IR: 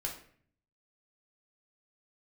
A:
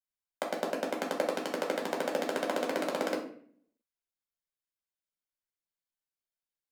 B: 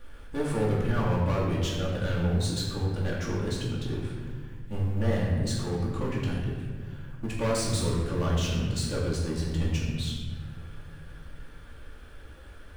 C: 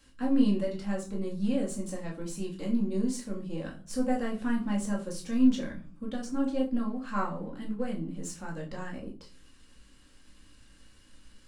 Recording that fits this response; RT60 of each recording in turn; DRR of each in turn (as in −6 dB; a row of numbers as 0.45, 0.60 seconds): A; 0.55, 1.6, 0.40 seconds; −1.0, −6.5, −2.5 decibels